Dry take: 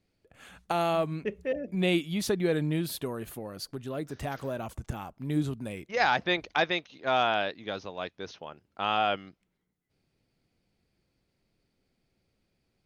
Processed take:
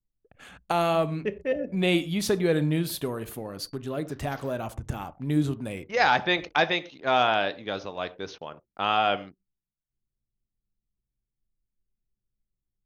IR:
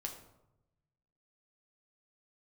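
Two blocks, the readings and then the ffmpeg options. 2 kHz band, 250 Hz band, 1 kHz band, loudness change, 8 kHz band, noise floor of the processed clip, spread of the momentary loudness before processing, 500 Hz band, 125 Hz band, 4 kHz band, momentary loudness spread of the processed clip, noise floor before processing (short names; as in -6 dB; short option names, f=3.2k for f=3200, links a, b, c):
+3.5 dB, +3.0 dB, +3.5 dB, +3.5 dB, +3.5 dB, under -85 dBFS, 13 LU, +3.5 dB, +3.5 dB, +3.5 dB, 13 LU, -78 dBFS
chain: -filter_complex "[0:a]asplit=2[a][b];[1:a]atrim=start_sample=2205,afade=t=out:st=0.18:d=0.01,atrim=end_sample=8379[c];[b][c]afir=irnorm=-1:irlink=0,volume=-3.5dB[d];[a][d]amix=inputs=2:normalize=0,anlmdn=0.00398"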